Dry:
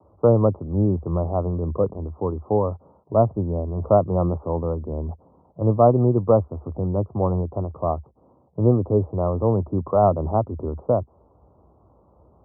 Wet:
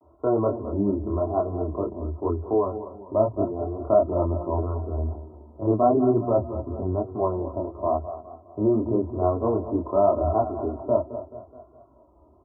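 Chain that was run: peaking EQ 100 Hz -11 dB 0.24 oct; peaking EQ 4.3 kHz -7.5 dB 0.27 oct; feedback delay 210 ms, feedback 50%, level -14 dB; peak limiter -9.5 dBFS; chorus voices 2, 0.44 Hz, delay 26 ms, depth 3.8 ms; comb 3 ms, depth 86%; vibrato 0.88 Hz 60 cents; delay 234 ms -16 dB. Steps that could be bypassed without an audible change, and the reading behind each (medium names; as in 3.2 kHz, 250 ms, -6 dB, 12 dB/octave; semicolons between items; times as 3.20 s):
peaking EQ 4.3 kHz: input has nothing above 1.4 kHz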